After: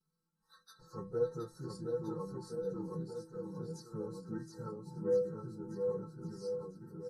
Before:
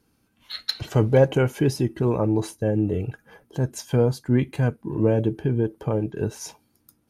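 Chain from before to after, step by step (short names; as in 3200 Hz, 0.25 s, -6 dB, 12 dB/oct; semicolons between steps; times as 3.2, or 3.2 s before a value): pitch shift by moving bins -2 st; Chebyshev band-stop 1800–3900 Hz, order 5; high shelf 9900 Hz -9.5 dB; fixed phaser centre 450 Hz, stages 8; metallic resonator 160 Hz, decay 0.28 s, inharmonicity 0.008; bouncing-ball echo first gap 0.72 s, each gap 0.9×, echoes 5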